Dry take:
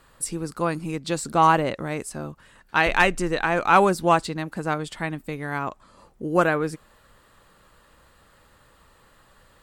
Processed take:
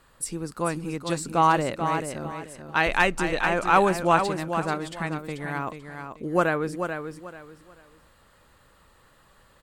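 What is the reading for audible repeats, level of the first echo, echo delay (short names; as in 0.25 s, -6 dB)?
3, -7.5 dB, 0.437 s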